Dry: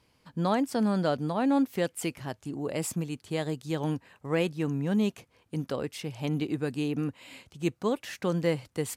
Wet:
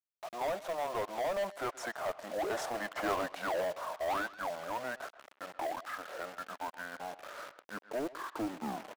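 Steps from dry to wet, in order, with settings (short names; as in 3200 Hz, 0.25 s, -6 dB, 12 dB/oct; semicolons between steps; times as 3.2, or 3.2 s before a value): tape stop at the end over 0.65 s; Doppler pass-by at 3.06, 32 m/s, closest 6.6 m; graphic EQ 125/250/500/1000/2000/4000/8000 Hz -10/+4/+4/+9/+8/-6/-7 dB; in parallel at -1 dB: compressor 6:1, threshold -51 dBFS, peak gain reduction 28 dB; on the sum: dynamic EQ 160 Hz, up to +5 dB, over -55 dBFS, Q 4.8; high-pass sweep 1000 Hz -> 420 Hz, 6.84–8.8; bit-crush 10-bit; overdrive pedal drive 29 dB, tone 4200 Hz, clips at -20 dBFS; pitch shift -7.5 st; short-mantissa float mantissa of 2-bit; speakerphone echo 0.13 s, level -15 dB; gain -5.5 dB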